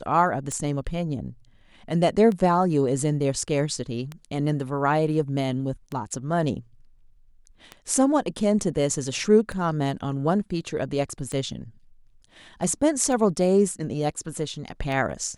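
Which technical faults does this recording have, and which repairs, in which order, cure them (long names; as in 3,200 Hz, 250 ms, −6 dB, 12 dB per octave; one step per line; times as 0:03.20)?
scratch tick 33 1/3 rpm −19 dBFS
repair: click removal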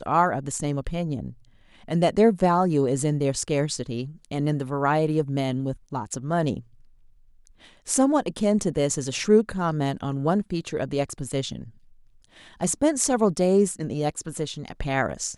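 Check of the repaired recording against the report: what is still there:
none of them is left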